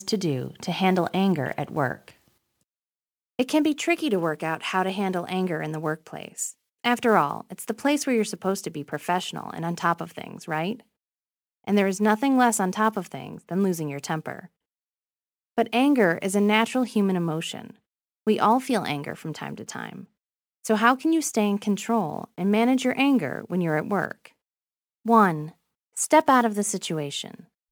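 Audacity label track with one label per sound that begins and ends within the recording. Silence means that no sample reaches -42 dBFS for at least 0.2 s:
3.390000	6.510000	sound
6.850000	10.800000	sound
11.670000	14.460000	sound
15.580000	17.710000	sound
18.270000	20.040000	sound
20.640000	24.270000	sound
25.050000	25.510000	sound
25.970000	27.400000	sound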